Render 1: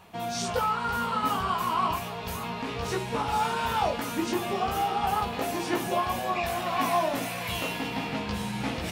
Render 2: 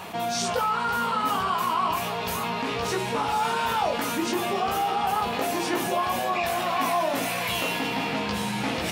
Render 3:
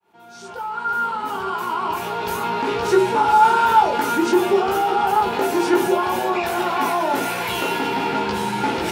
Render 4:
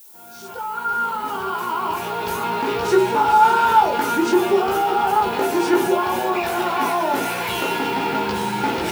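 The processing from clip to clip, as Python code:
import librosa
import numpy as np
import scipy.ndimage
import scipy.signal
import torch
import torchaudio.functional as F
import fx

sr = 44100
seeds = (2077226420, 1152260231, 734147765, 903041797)

y1 = fx.highpass(x, sr, hz=210.0, slope=6)
y1 = fx.env_flatten(y1, sr, amount_pct=50)
y2 = fx.fade_in_head(y1, sr, length_s=2.72)
y2 = fx.small_body(y2, sr, hz=(380.0, 880.0, 1400.0), ring_ms=50, db=15)
y2 = y2 * 10.0 ** (1.0 / 20.0)
y3 = fx.dmg_noise_colour(y2, sr, seeds[0], colour='violet', level_db=-45.0)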